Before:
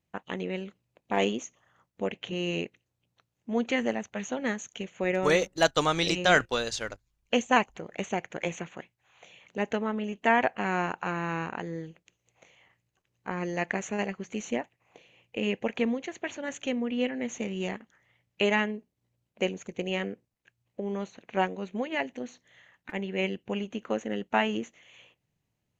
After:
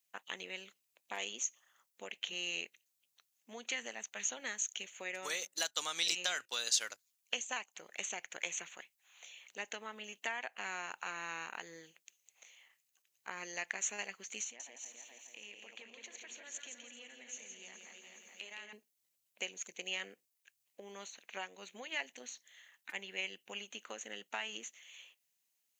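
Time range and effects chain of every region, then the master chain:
14.43–18.73 regenerating reverse delay 0.211 s, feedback 58%, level -10 dB + compressor 3:1, threshold -46 dBFS + feedback echo 0.167 s, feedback 38%, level -5.5 dB
whole clip: compressor 6:1, threshold -28 dBFS; HPF 130 Hz; differentiator; gain +8 dB

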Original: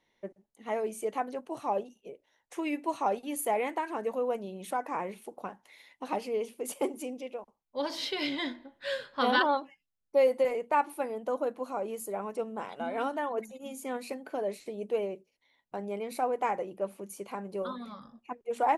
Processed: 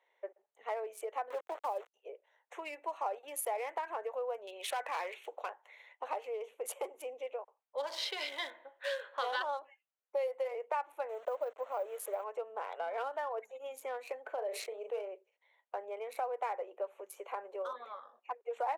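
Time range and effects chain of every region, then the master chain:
1.3–1.94 high shelf 5000 Hz -7 dB + sample gate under -41.5 dBFS + three-band squash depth 70%
4.47–5.5 weighting filter D + hard clip -28.5 dBFS
11.09–12.24 level-crossing sampler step -46 dBFS + bell 590 Hz +5.5 dB 0.25 oct
14.34–15.12 transient shaper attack 0 dB, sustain -8 dB + doubler 36 ms -10 dB + sustainer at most 74 dB/s
whole clip: Wiener smoothing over 9 samples; compressor 4:1, threshold -36 dBFS; steep high-pass 460 Hz 36 dB/oct; gain +2.5 dB

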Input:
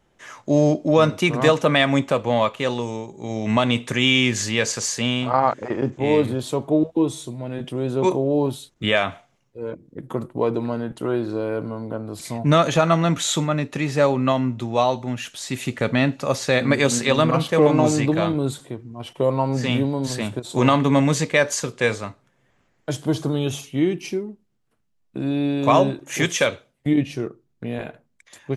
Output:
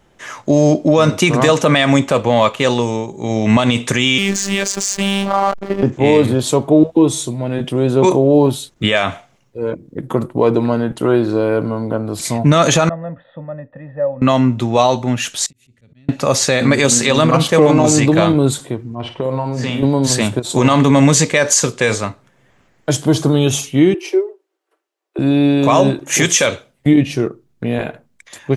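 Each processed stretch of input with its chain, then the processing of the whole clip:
4.18–5.83 backlash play -23.5 dBFS + robotiser 197 Hz
12.89–14.22 vocal tract filter e + tilt -1.5 dB/oct + fixed phaser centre 960 Hz, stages 4
15.46–16.09 passive tone stack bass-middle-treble 10-0-1 + auto swell 0.284 s + compressor 12:1, threshold -53 dBFS
18.95–19.83 low-pass opened by the level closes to 2700 Hz, open at -15.5 dBFS + compressor 5:1, threshold -26 dBFS + flutter echo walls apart 9.2 m, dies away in 0.31 s
23.94–25.19 steep high-pass 310 Hz 96 dB/oct + high shelf 2500 Hz -8.5 dB + comb 5.2 ms, depth 31%
whole clip: dynamic EQ 7100 Hz, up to +7 dB, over -42 dBFS, Q 1.1; maximiser +10.5 dB; gain -1 dB

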